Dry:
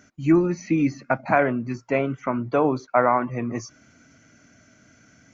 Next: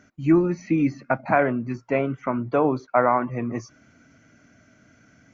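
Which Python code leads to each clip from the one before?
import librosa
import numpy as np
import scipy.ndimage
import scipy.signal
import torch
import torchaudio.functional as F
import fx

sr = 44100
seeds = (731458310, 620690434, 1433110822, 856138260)

y = fx.high_shelf(x, sr, hz=5400.0, db=-12.0)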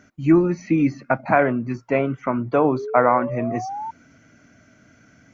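y = fx.spec_paint(x, sr, seeds[0], shape='rise', start_s=2.73, length_s=1.18, low_hz=380.0, high_hz=920.0, level_db=-32.0)
y = F.gain(torch.from_numpy(y), 2.5).numpy()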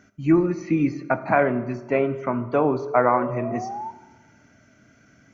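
y = fx.rev_fdn(x, sr, rt60_s=1.2, lf_ratio=1.2, hf_ratio=0.7, size_ms=15.0, drr_db=10.5)
y = F.gain(torch.from_numpy(y), -2.5).numpy()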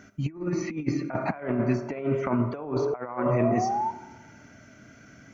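y = fx.over_compress(x, sr, threshold_db=-26.0, ratio=-0.5)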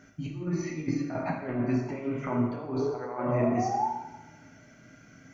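y = fx.rev_plate(x, sr, seeds[1], rt60_s=0.8, hf_ratio=0.95, predelay_ms=0, drr_db=-0.5)
y = F.gain(torch.from_numpy(y), -6.0).numpy()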